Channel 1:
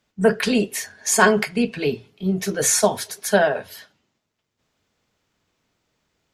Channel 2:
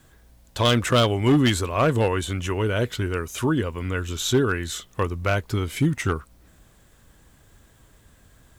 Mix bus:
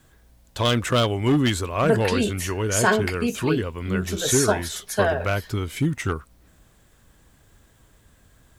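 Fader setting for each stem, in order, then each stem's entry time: −4.5, −1.5 decibels; 1.65, 0.00 seconds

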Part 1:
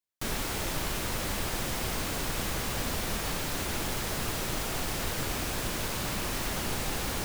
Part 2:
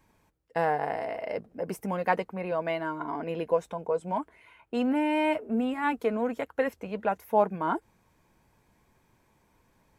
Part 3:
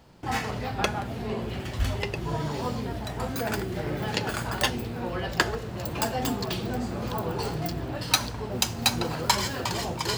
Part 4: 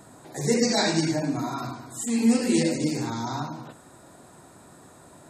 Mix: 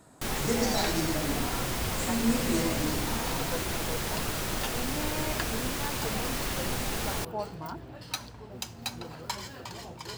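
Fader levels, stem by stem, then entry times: 0.0, −12.0, −12.0, −7.0 decibels; 0.00, 0.00, 0.00, 0.00 seconds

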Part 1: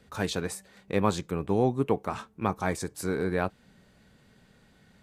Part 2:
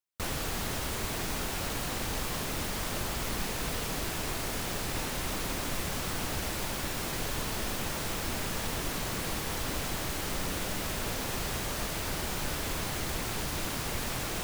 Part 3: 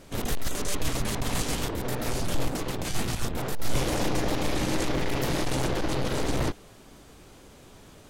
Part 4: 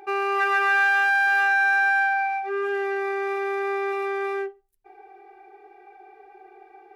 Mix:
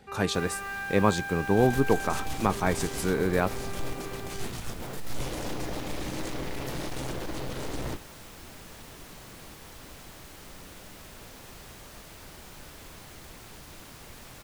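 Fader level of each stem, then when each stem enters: +2.5, −13.0, −7.5, −16.0 decibels; 0.00, 0.15, 1.45, 0.00 seconds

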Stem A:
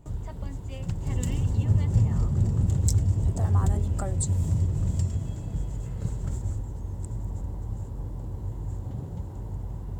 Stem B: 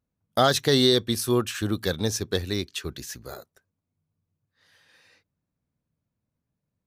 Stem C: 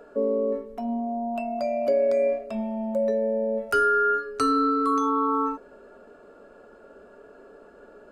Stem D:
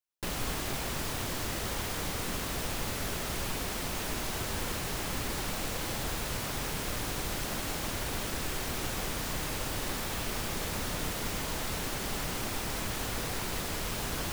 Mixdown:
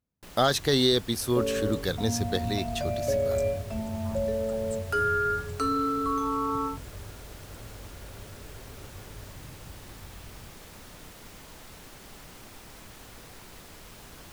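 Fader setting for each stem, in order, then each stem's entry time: −13.5, −3.0, −5.0, −13.0 decibels; 0.50, 0.00, 1.20, 0.00 seconds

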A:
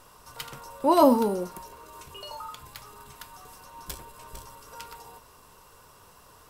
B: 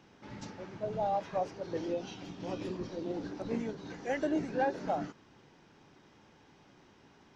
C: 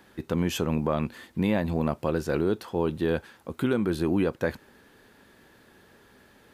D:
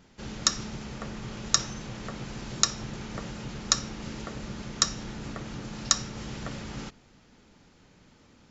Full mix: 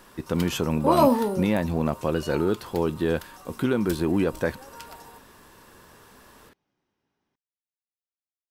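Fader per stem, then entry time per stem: −0.5 dB, −19.0 dB, +1.5 dB, muted; 0.00 s, 0.00 s, 0.00 s, muted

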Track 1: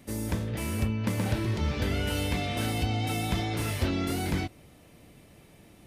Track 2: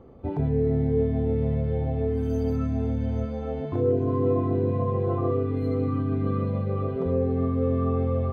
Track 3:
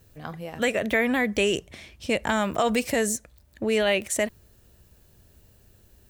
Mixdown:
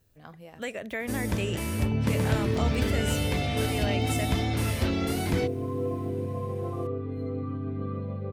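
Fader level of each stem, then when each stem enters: +1.0, −7.0, −10.5 decibels; 1.00, 1.55, 0.00 seconds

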